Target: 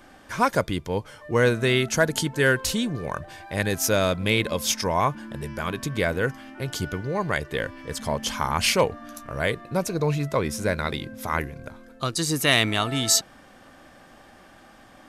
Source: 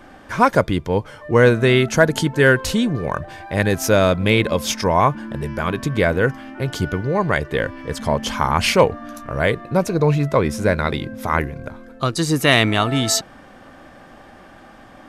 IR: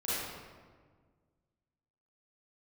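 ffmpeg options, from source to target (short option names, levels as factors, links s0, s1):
-af "highshelf=f=3300:g=9.5,volume=0.422"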